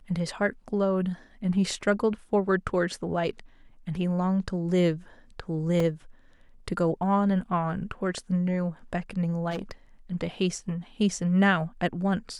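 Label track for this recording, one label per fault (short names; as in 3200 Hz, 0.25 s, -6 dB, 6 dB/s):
5.800000	5.800000	gap 2.9 ms
9.500000	9.710000	clipped -28 dBFS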